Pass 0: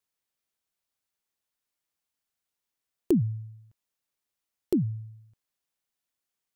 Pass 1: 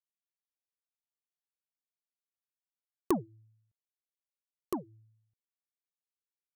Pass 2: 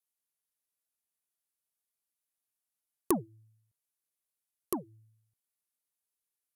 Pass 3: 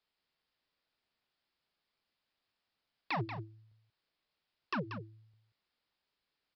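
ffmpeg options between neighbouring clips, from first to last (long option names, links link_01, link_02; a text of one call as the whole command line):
ffmpeg -i in.wav -af "aeval=exprs='0.237*(cos(1*acos(clip(val(0)/0.237,-1,1)))-cos(1*PI/2))+0.075*(cos(3*acos(clip(val(0)/0.237,-1,1)))-cos(3*PI/2))+0.00473*(cos(7*acos(clip(val(0)/0.237,-1,1)))-cos(7*PI/2))':channel_layout=same" out.wav
ffmpeg -i in.wav -af "equalizer=frequency=11000:width=1:gain=13" out.wav
ffmpeg -i in.wav -af "alimiter=limit=-18.5dB:level=0:latency=1:release=117,aresample=11025,aeval=exprs='0.0119*(abs(mod(val(0)/0.0119+3,4)-2)-1)':channel_layout=same,aresample=44100,aecho=1:1:185:0.355,volume=11.5dB" out.wav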